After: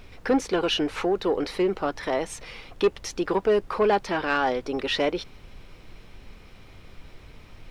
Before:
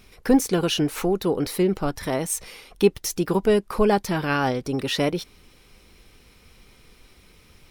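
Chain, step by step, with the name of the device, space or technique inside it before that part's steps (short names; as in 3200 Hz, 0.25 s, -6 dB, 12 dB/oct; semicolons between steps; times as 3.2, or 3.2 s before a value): aircraft cabin announcement (BPF 370–3800 Hz; soft clip -16 dBFS, distortion -16 dB; brown noise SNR 17 dB); gain +2.5 dB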